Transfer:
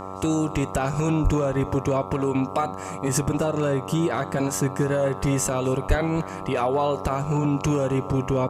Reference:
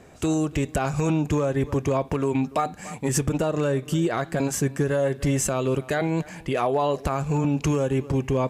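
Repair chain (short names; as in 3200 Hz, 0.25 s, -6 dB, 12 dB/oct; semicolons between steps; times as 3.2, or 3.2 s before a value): de-hum 95.1 Hz, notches 14; 1.23–1.35 HPF 140 Hz 24 dB/oct; 5.88–6 HPF 140 Hz 24 dB/oct; inverse comb 0.258 s -23 dB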